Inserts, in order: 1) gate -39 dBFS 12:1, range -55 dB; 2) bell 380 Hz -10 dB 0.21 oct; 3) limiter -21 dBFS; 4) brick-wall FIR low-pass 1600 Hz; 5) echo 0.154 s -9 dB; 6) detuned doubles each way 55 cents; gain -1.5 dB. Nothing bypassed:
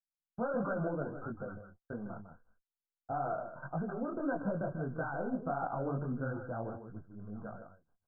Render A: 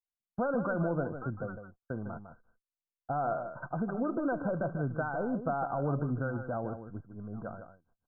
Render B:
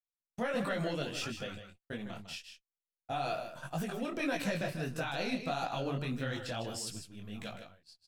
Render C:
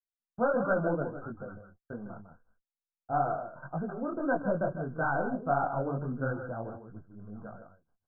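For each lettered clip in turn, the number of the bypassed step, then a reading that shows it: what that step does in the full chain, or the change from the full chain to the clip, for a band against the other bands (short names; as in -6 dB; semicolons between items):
6, loudness change +3.5 LU; 4, momentary loudness spread change -2 LU; 3, mean gain reduction 2.0 dB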